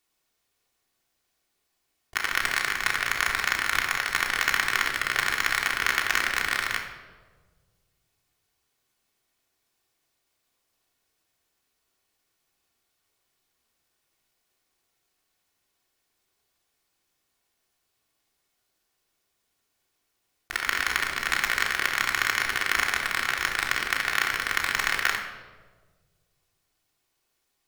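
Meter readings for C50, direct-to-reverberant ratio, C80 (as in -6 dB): 6.0 dB, 0.0 dB, 8.5 dB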